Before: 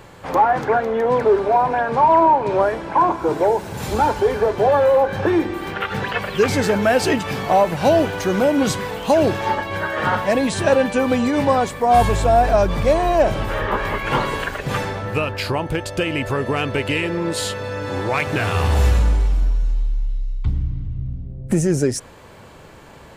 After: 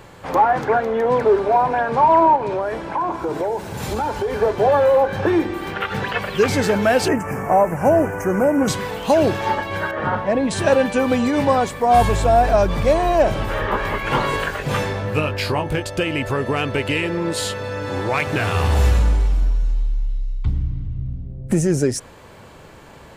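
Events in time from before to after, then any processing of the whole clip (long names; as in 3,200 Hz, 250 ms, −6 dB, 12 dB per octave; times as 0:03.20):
0:02.36–0:04.33: downward compressor 4 to 1, threshold −19 dBFS
0:07.08–0:08.68: Butterworth band-reject 3,800 Hz, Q 0.75
0:09.91–0:10.51: low-pass filter 1,200 Hz 6 dB per octave
0:14.22–0:15.83: double-tracking delay 20 ms −5.5 dB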